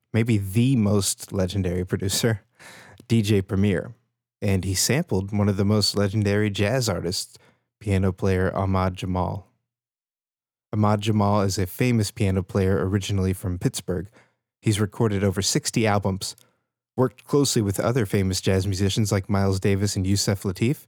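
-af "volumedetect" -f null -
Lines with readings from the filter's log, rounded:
mean_volume: -23.3 dB
max_volume: -7.8 dB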